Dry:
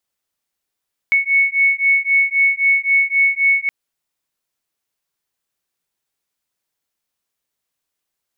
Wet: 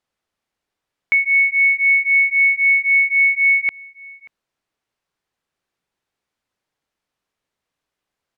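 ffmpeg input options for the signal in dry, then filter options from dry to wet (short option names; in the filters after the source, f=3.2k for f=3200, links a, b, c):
-f lavfi -i "aevalsrc='0.168*(sin(2*PI*2210*t)+sin(2*PI*2213.8*t))':d=2.57:s=44100"
-filter_complex "[0:a]aemphasis=mode=reproduction:type=75fm,asplit=2[a][b];[b]alimiter=limit=-20dB:level=0:latency=1,volume=-3dB[c];[a][c]amix=inputs=2:normalize=0,asplit=2[d][e];[e]adelay=583.1,volume=-21dB,highshelf=f=4k:g=-13.1[f];[d][f]amix=inputs=2:normalize=0"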